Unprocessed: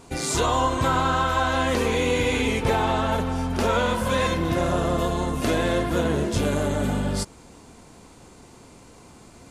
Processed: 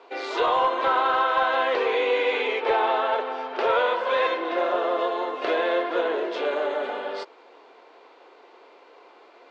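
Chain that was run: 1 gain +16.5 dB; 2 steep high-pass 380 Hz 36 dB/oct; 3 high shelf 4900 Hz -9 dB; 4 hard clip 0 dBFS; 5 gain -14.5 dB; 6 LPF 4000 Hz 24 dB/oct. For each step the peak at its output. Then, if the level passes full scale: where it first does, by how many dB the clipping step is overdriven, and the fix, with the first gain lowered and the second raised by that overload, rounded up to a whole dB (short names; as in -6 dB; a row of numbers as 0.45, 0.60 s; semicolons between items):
+5.5, +6.0, +5.5, 0.0, -14.5, -13.5 dBFS; step 1, 5.5 dB; step 1 +10.5 dB, step 5 -8.5 dB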